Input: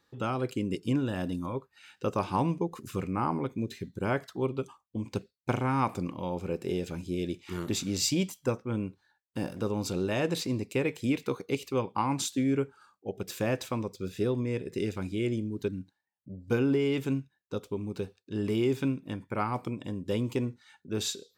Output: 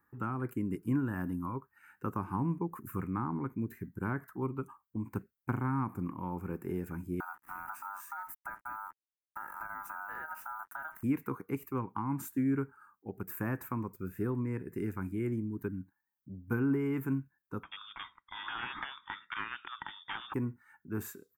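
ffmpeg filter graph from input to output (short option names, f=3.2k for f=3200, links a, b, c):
-filter_complex "[0:a]asettb=1/sr,asplit=3[a][b][c];[a]atrim=end=7.204[d];[b]atrim=start=7.2:end=11.03,asetpts=PTS-STARTPTS,afade=t=in:d=0.004:c=qsin,afade=t=out:st=3.826:d=0.004:c=qsin,aeval=exprs='val(0)*sin(2*PI*1100*n/s)':c=same,acrusher=bits=7:mix=0:aa=0.5,acompressor=threshold=-36dB:ratio=6:attack=3.2:release=140:knee=1:detection=peak[e];[c]atrim=start=11.026[f];[d][e]acrossfade=d=0.004:c1=hsin:c2=qsin[g];[g][f]acrossfade=d=0.004:c1=qsin:c2=hsin,asettb=1/sr,asplit=3[h][i][j];[h]atrim=end=17.634[k];[i]atrim=start=17.63:end=20.34,asetpts=PTS-STARTPTS,afade=t=in:d=0.004:c=qsin,afade=t=out:st=2.706:d=0.004:c=qsin,aeval=exprs='0.178*sin(PI/2*3.16*val(0)/0.178)':c=same,lowpass=f=3.1k:t=q:w=0.5098,lowpass=f=3.1k:t=q:w=0.6013,lowpass=f=3.1k:t=q:w=0.9,lowpass=f=3.1k:t=q:w=2.563,afreqshift=-3700[l];[j]atrim=start=20.336[m];[k][l]acrossfade=d=0.004:c1=hsin:c2=qsin[n];[n][m]acrossfade=d=0.004:c1=qsin:c2=hsin,firequalizer=gain_entry='entry(310,0);entry(550,-13);entry(930,3);entry(1600,4);entry(3500,-28);entry(9100,-4);entry(14000,11)':delay=0.05:min_phase=1,acrossover=split=410[o][p];[p]acompressor=threshold=-33dB:ratio=6[q];[o][q]amix=inputs=2:normalize=0,volume=-2.5dB"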